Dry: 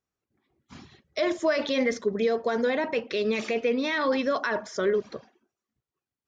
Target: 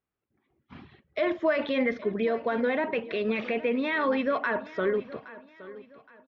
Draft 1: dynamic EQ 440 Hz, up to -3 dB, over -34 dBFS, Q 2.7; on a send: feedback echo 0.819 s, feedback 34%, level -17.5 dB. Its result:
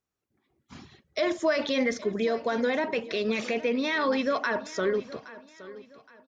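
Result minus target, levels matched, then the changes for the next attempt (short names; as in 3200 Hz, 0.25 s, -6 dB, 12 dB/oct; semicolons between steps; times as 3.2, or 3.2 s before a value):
4000 Hz band +6.0 dB
add after dynamic EQ: LPF 3100 Hz 24 dB/oct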